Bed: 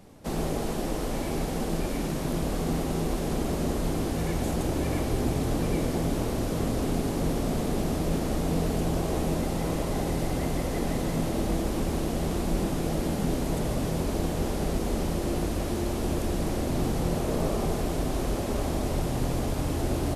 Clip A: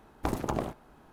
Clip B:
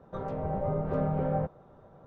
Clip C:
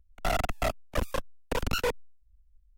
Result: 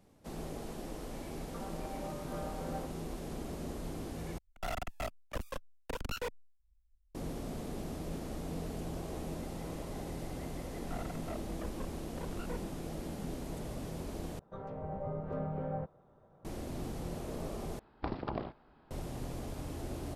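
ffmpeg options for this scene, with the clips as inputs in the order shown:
-filter_complex "[2:a]asplit=2[a][b];[3:a]asplit=2[c][d];[0:a]volume=-13dB[e];[a]highpass=730[f];[d]lowpass=1.7k[g];[1:a]aresample=11025,aresample=44100[h];[e]asplit=4[i][j][k][l];[i]atrim=end=4.384[m];[c]atrim=end=2.77,asetpts=PTS-STARTPTS,volume=-10dB[n];[j]atrim=start=7.146:end=14.394[o];[b]atrim=end=2.06,asetpts=PTS-STARTPTS,volume=-8.5dB[p];[k]atrim=start=16.446:end=17.794[q];[h]atrim=end=1.12,asetpts=PTS-STARTPTS,volume=-6.5dB[r];[l]atrim=start=18.906[s];[f]atrim=end=2.06,asetpts=PTS-STARTPTS,volume=-6.5dB,afade=t=in:d=0.004:c=hsin,afade=t=out:st=2.056:d=0.004:c=hsin,adelay=1400[t];[g]atrim=end=2.77,asetpts=PTS-STARTPTS,volume=-15dB,afade=t=in:d=0.004:c=hsin,afade=t=out:st=2.766:d=0.004:c=hsin,adelay=470106S[u];[m][n]acrossfade=d=0.004:c1=hsin:c2=hsin[v];[v][o]acrossfade=d=0.004:c1=hsin:c2=hsin[w];[w][p]acrossfade=d=0.004:c1=hsin:c2=hsin[x];[x][q]acrossfade=d=0.004:c1=hsin:c2=hsin[y];[y][r]acrossfade=d=0.004:c1=hsin:c2=hsin[z];[z][s]acrossfade=d=0.004:c1=hsin:c2=hsin[aa];[aa][t][u]amix=inputs=3:normalize=0"

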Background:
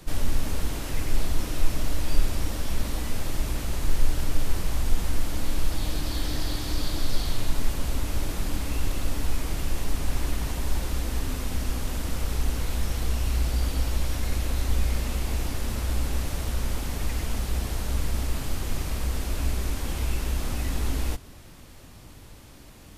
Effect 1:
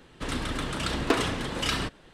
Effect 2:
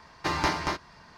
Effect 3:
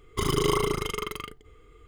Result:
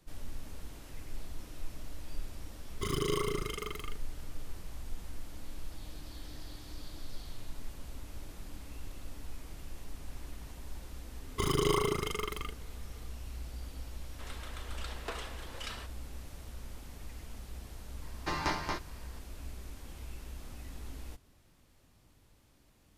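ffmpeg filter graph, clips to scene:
-filter_complex "[3:a]asplit=2[a][b];[0:a]volume=-17.5dB[c];[a]asuperstop=centerf=780:order=4:qfactor=1.6[d];[1:a]highpass=f=430:w=0.5412,highpass=f=430:w=1.3066[e];[d]atrim=end=1.87,asetpts=PTS-STARTPTS,volume=-7.5dB,afade=t=in:d=0.004:c=hsin,afade=t=out:st=1.866:d=0.004:c=hsin,adelay=2640[f];[b]atrim=end=1.87,asetpts=PTS-STARTPTS,volume=-4.5dB,afade=t=in:d=0.004:c=hsin,afade=t=out:st=1.866:d=0.004:c=hsin,adelay=11210[g];[e]atrim=end=2.13,asetpts=PTS-STARTPTS,volume=-14dB,afade=t=in:d=0.004:c=hsin,afade=t=out:st=2.126:d=0.004:c=hsin,adelay=13980[h];[2:a]atrim=end=1.17,asetpts=PTS-STARTPTS,volume=-6.5dB,afade=t=in:d=0.004:c=hsin,afade=t=out:st=1.166:d=0.004:c=hsin,adelay=18020[i];[c][f][g][h][i]amix=inputs=5:normalize=0"

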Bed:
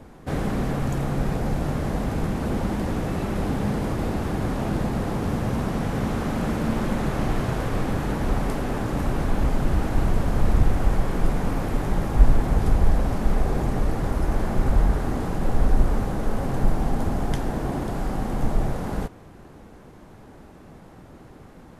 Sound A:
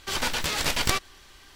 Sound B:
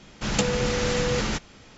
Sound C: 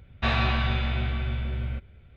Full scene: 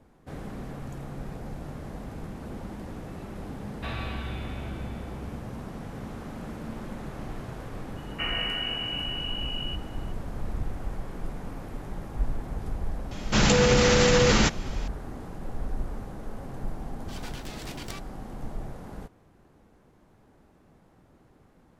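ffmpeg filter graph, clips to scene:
-filter_complex "[3:a]asplit=2[a][b];[0:a]volume=-13dB[c];[b]lowpass=f=2.6k:t=q:w=0.5098,lowpass=f=2.6k:t=q:w=0.6013,lowpass=f=2.6k:t=q:w=0.9,lowpass=f=2.6k:t=q:w=2.563,afreqshift=-3000[d];[2:a]alimiter=level_in=17dB:limit=-1dB:release=50:level=0:latency=1[e];[a]atrim=end=2.16,asetpts=PTS-STARTPTS,volume=-11dB,afade=t=in:d=0.004:c=hsin,afade=t=out:st=2.156:d=0.004:c=hsin,adelay=3600[f];[d]atrim=end=2.16,asetpts=PTS-STARTPTS,volume=-7dB,afade=t=in:d=0.004:c=hsin,afade=t=out:st=2.156:d=0.004:c=hsin,adelay=7960[g];[e]atrim=end=1.77,asetpts=PTS-STARTPTS,volume=-9.5dB,afade=t=in:d=0.004:c=hsin,afade=t=out:st=1.766:d=0.004:c=hsin,adelay=13110[h];[1:a]atrim=end=1.55,asetpts=PTS-STARTPTS,volume=-16.5dB,afade=t=in:d=0.004:c=hsin,afade=t=out:st=1.546:d=0.004:c=hsin,adelay=17010[i];[c][f][g][h][i]amix=inputs=5:normalize=0"

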